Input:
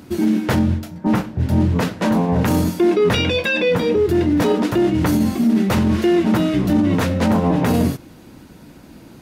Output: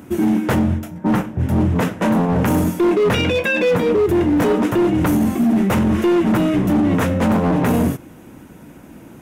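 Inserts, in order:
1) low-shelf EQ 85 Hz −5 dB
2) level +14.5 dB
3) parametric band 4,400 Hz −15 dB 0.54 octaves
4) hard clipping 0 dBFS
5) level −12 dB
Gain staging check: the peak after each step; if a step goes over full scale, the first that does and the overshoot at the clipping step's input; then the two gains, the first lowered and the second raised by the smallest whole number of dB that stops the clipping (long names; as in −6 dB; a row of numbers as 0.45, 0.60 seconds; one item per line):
−7.5, +7.0, +7.0, 0.0, −12.0 dBFS
step 2, 7.0 dB
step 2 +7.5 dB, step 5 −5 dB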